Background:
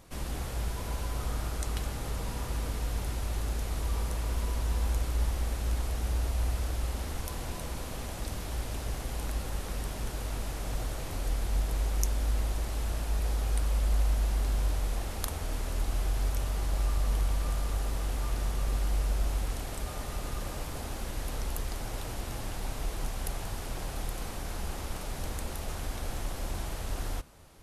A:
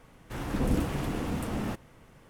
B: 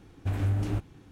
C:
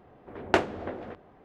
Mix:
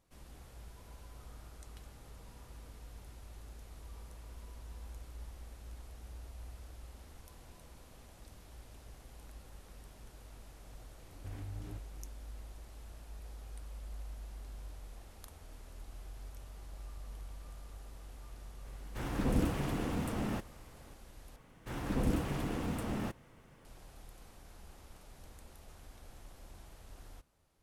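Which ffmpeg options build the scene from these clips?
-filter_complex "[1:a]asplit=2[a][b];[0:a]volume=-18.5dB[c];[2:a]alimiter=level_in=4dB:limit=-24dB:level=0:latency=1:release=212,volume=-4dB[d];[c]asplit=2[e][f];[e]atrim=end=21.364[g];[b]atrim=end=2.29,asetpts=PTS-STARTPTS,volume=-4.5dB[h];[f]atrim=start=23.646[i];[d]atrim=end=1.11,asetpts=PTS-STARTPTS,volume=-10.5dB,afade=t=in:d=0.004:c=hsin,afade=t=out:st=1.106:d=0.004:c=hsin,adelay=10990[j];[a]atrim=end=2.29,asetpts=PTS-STARTPTS,volume=-3.5dB,afade=t=in:d=0.004:c=hsin,afade=t=out:st=2.286:d=0.004:c=hsin,adelay=18650[k];[g][h]acrossfade=d=0.004:c1=hsin:c2=hsin[l];[l][i]acrossfade=d=0.004:c1=hsin:c2=hsin[m];[m][j][k]amix=inputs=3:normalize=0"

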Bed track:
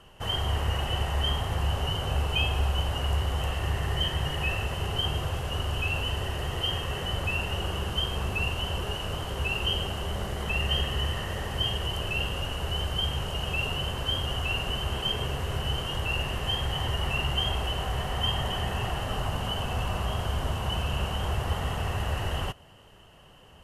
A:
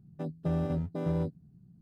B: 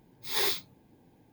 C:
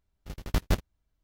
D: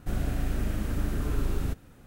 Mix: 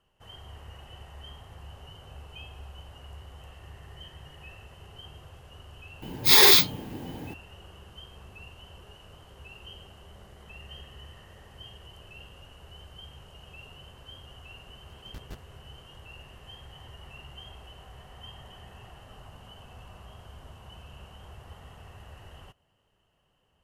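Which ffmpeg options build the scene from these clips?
-filter_complex "[0:a]volume=-18.5dB[a];[2:a]alimiter=level_in=25.5dB:limit=-1dB:release=50:level=0:latency=1,atrim=end=1.32,asetpts=PTS-STARTPTS,volume=-4dB,afade=t=in:d=0.004:c=hsin,afade=t=out:st=1.316:d=0.004:c=hsin,adelay=6020[b];[3:a]atrim=end=1.23,asetpts=PTS-STARTPTS,volume=-18dB,afade=t=in:d=0.004:c=hsin,afade=t=out:st=1.226:d=0.004:c=hsin,adelay=643860S[c];[a][b][c]amix=inputs=3:normalize=0"

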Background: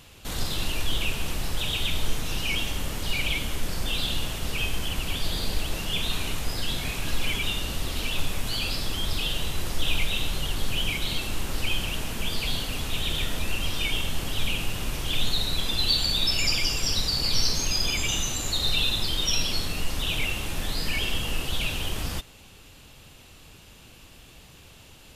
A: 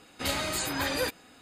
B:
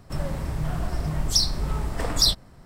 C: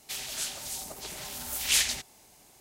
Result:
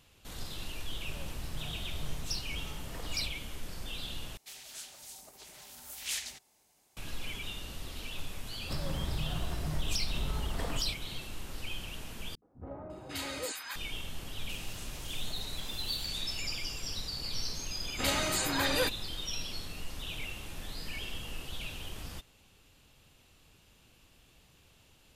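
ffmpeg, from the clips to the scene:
-filter_complex "[2:a]asplit=2[a][b];[3:a]asplit=2[c][d];[1:a]asplit=2[e][f];[0:a]volume=-12.5dB[g];[c]lowshelf=f=380:g=-3.5[h];[b]acompressor=threshold=-30dB:ratio=6:attack=3.2:release=140:knee=1:detection=peak[i];[e]acrossover=split=200|930[j][k][l];[k]adelay=70[m];[l]adelay=550[n];[j][m][n]amix=inputs=3:normalize=0[o];[d]acompressor=threshold=-39dB:ratio=6:attack=3.2:release=140:knee=1:detection=peak[p];[g]asplit=3[q][r][s];[q]atrim=end=4.374[t];[h]atrim=end=2.6,asetpts=PTS-STARTPTS,volume=-11.5dB[u];[r]atrim=start=6.966:end=12.354[v];[o]atrim=end=1.41,asetpts=PTS-STARTPTS,volume=-7.5dB[w];[s]atrim=start=13.756[x];[a]atrim=end=2.65,asetpts=PTS-STARTPTS,volume=-16.5dB,afade=t=in:d=0.004:c=hsin,afade=t=out:st=2.646:d=0.004:c=hsin,adelay=950[y];[i]atrim=end=2.65,asetpts=PTS-STARTPTS,volume=-1dB,afade=t=in:d=0.004:c=hsin,afade=t=out:st=2.646:d=0.004:c=hsin,adelay=8600[z];[p]atrim=end=2.6,asetpts=PTS-STARTPTS,volume=-6.5dB,afade=t=in:d=0.004:c=hsin,afade=t=out:st=2.596:d=0.004:c=hsin,adelay=14400[aa];[f]atrim=end=1.41,asetpts=PTS-STARTPTS,volume=-0.5dB,afade=t=in:d=0.004:c=hsin,afade=t=out:st=1.406:d=0.004:c=hsin,adelay=17790[ab];[t][u]acrossfade=d=0.004:c1=hsin:c2=hsin[ac];[ac][v]acrossfade=d=0.004:c1=hsin:c2=hsin[ad];[ad][w]acrossfade=d=0.004:c1=hsin:c2=hsin[ae];[ae][x]acrossfade=d=0.004:c1=hsin:c2=hsin[af];[af][y][z][aa][ab]amix=inputs=5:normalize=0"

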